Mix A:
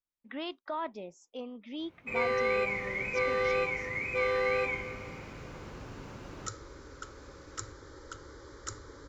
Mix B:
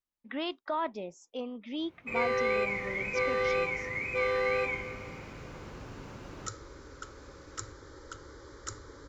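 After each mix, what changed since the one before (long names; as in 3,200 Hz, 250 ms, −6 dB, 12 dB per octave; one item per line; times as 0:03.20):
speech +3.5 dB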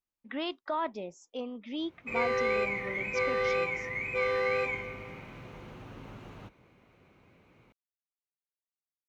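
second sound: muted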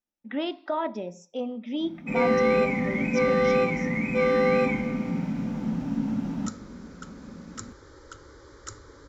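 first sound: add low shelf with overshoot 320 Hz +7 dB, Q 3
second sound: unmuted
reverb: on, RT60 0.45 s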